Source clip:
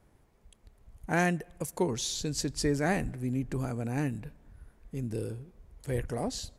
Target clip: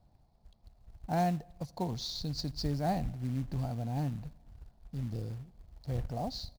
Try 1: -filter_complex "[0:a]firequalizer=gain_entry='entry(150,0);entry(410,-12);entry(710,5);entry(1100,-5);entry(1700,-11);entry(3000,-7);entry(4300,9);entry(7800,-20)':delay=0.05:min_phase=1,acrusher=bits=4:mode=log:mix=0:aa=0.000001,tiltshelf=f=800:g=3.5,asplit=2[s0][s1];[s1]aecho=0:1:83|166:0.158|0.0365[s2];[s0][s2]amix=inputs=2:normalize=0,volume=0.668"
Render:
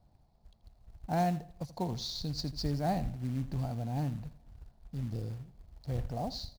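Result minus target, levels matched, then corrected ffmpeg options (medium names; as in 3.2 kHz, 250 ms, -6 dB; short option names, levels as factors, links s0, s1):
echo-to-direct +11 dB
-filter_complex "[0:a]firequalizer=gain_entry='entry(150,0);entry(410,-12);entry(710,5);entry(1100,-5);entry(1700,-11);entry(3000,-7);entry(4300,9);entry(7800,-20)':delay=0.05:min_phase=1,acrusher=bits=4:mode=log:mix=0:aa=0.000001,tiltshelf=f=800:g=3.5,asplit=2[s0][s1];[s1]aecho=0:1:83|166:0.0447|0.0103[s2];[s0][s2]amix=inputs=2:normalize=0,volume=0.668"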